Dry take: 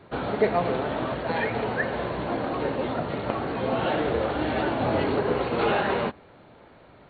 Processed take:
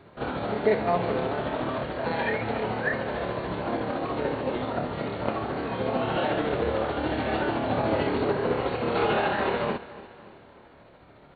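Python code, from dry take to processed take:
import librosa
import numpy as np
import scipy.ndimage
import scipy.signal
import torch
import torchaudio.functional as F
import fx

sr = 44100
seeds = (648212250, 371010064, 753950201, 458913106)

p1 = fx.stretch_grains(x, sr, factor=1.6, grain_ms=147.0)
y = p1 + fx.echo_feedback(p1, sr, ms=284, feedback_pct=51, wet_db=-17.5, dry=0)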